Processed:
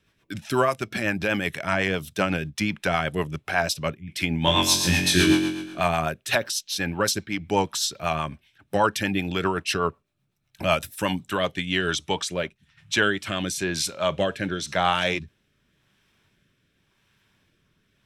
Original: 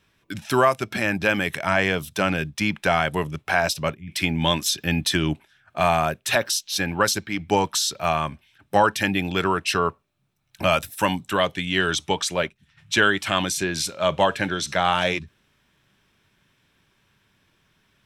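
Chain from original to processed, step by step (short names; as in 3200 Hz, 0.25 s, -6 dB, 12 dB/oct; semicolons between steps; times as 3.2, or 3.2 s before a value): 4.45–5.8 flutter echo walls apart 3.8 m, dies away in 1.1 s; rotary speaker horn 8 Hz, later 0.9 Hz, at 11.51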